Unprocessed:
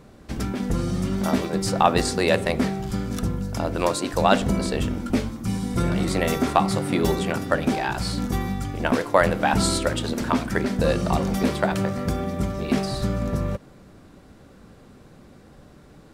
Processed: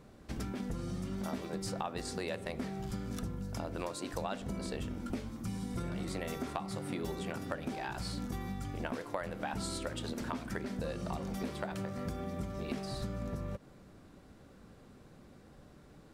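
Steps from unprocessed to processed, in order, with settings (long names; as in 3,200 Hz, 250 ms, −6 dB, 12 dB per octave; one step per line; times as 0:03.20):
downward compressor 5 to 1, threshold −27 dBFS, peak gain reduction 14.5 dB
level −8 dB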